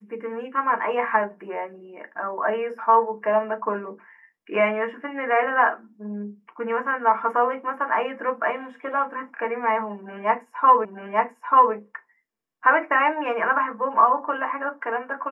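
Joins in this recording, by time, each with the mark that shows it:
0:10.85: the same again, the last 0.89 s

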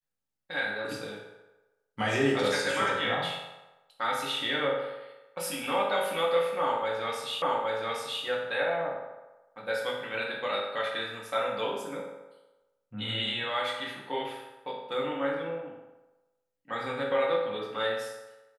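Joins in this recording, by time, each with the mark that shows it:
0:07.42: the same again, the last 0.82 s

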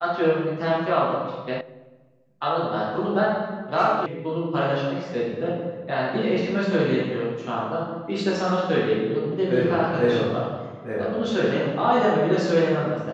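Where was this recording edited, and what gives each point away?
0:01.61: cut off before it has died away
0:04.06: cut off before it has died away

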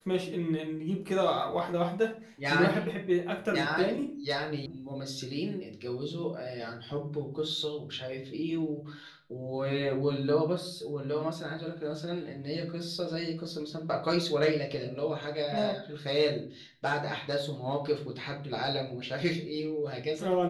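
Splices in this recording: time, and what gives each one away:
0:04.66: cut off before it has died away

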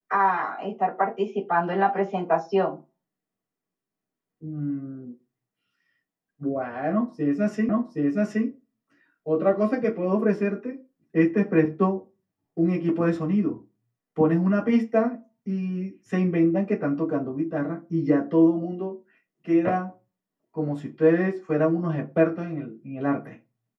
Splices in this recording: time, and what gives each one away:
0:07.69: the same again, the last 0.77 s

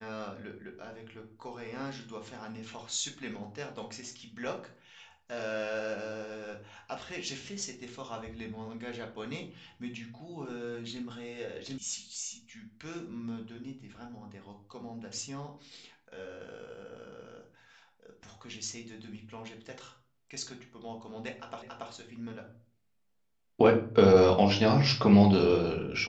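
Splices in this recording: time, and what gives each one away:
0:11.78: cut off before it has died away
0:21.62: the same again, the last 0.28 s

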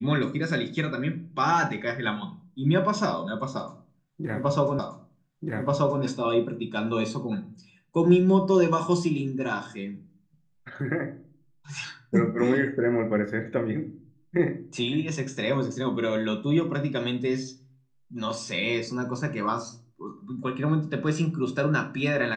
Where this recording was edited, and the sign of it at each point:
0:04.79: the same again, the last 1.23 s

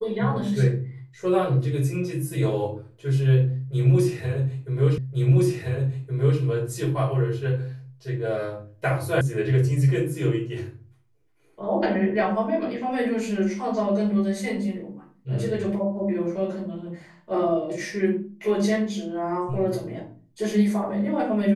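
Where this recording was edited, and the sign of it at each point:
0:04.98: the same again, the last 1.42 s
0:09.21: cut off before it has died away

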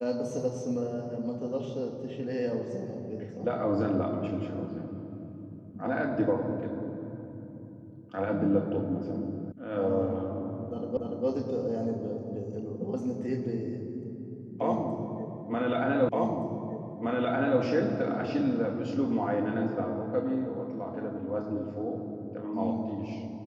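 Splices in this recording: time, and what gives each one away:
0:09.52: cut off before it has died away
0:10.97: the same again, the last 0.29 s
0:16.09: the same again, the last 1.52 s

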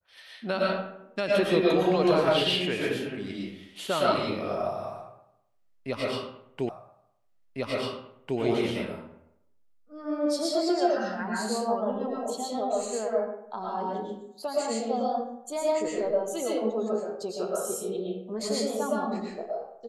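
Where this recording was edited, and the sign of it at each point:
0:06.69: the same again, the last 1.7 s

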